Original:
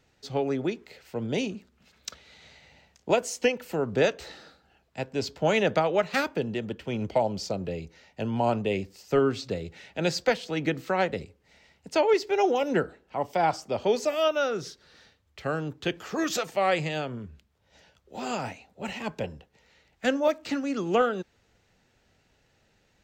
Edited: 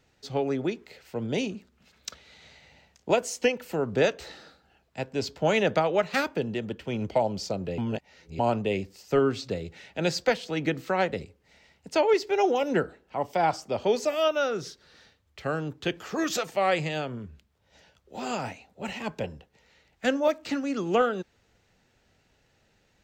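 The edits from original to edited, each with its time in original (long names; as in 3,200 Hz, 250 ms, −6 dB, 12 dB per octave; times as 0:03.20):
0:07.78–0:08.39: reverse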